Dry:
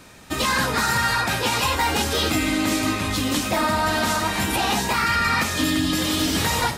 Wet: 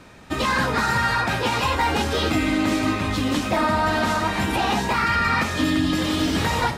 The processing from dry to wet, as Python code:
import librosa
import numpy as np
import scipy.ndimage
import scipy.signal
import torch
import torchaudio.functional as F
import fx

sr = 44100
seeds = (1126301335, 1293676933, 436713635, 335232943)

y = fx.lowpass(x, sr, hz=2500.0, slope=6)
y = F.gain(torch.from_numpy(y), 1.5).numpy()